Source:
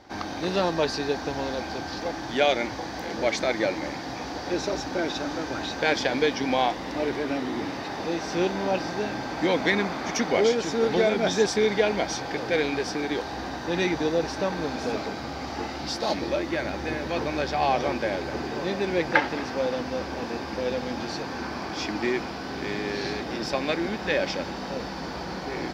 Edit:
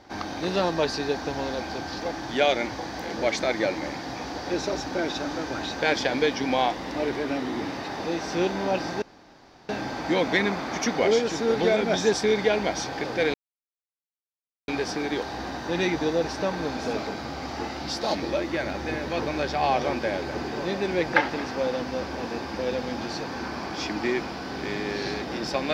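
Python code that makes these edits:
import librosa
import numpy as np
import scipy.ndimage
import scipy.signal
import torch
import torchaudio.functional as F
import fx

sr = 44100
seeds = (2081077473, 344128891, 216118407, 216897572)

y = fx.edit(x, sr, fx.insert_room_tone(at_s=9.02, length_s=0.67),
    fx.insert_silence(at_s=12.67, length_s=1.34), tone=tone)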